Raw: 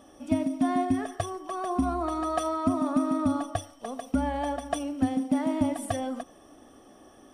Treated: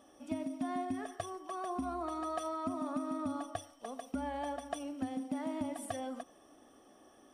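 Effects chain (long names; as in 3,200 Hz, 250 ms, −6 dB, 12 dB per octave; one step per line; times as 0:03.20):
low-shelf EQ 160 Hz −9 dB
downward compressor 3 to 1, threshold −27 dBFS, peak gain reduction 5 dB
level −6.5 dB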